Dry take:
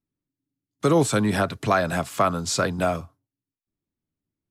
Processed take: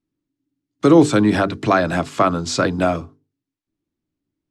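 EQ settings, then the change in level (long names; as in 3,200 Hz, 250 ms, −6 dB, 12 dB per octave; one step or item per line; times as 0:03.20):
low-pass filter 6,200 Hz 12 dB per octave
parametric band 310 Hz +9 dB 0.52 octaves
mains-hum notches 50/100/150/200/250/300/350/400/450 Hz
+4.0 dB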